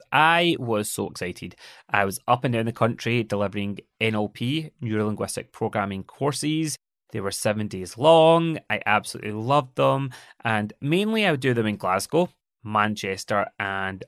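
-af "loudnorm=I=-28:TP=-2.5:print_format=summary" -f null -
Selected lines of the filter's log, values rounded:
Input Integrated:    -23.9 LUFS
Input True Peak:      -3.3 dBTP
Input LRA:             5.2 LU
Input Threshold:     -34.1 LUFS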